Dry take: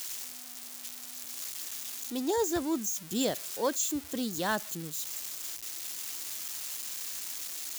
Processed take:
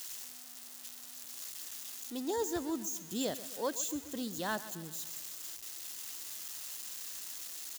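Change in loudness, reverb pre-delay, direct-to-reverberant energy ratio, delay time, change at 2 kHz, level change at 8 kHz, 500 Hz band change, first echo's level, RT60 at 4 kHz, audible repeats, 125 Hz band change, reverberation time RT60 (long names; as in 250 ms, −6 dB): −5.5 dB, no reverb audible, no reverb audible, 132 ms, −5.5 dB, −5.5 dB, −5.5 dB, −15.5 dB, no reverb audible, 4, −5.5 dB, no reverb audible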